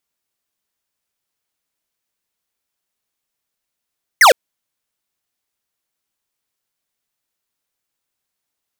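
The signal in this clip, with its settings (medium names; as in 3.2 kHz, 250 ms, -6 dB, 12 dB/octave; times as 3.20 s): laser zap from 2.2 kHz, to 450 Hz, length 0.11 s square, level -7 dB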